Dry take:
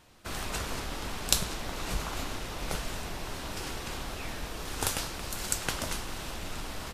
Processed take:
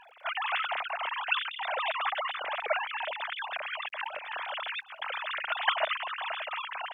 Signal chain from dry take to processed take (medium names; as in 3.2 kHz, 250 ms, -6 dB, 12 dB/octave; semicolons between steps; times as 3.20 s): formants replaced by sine waves; 3.09–5.40 s: compressor with a negative ratio -38 dBFS, ratio -0.5; crackle 130 per s -63 dBFS; trim +1.5 dB